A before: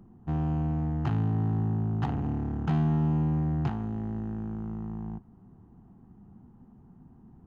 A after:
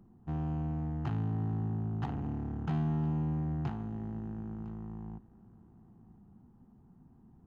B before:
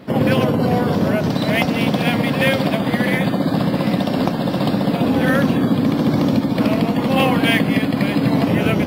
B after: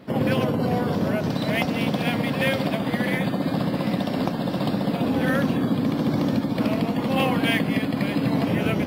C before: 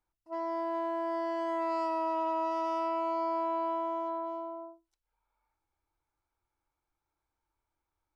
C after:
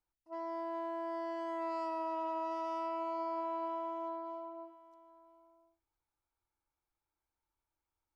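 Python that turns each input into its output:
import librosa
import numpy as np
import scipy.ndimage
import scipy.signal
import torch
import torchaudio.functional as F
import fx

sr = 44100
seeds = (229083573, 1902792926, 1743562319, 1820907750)

y = x + 10.0 ** (-20.0 / 20.0) * np.pad(x, (int(1006 * sr / 1000.0), 0))[:len(x)]
y = y * 10.0 ** (-6.0 / 20.0)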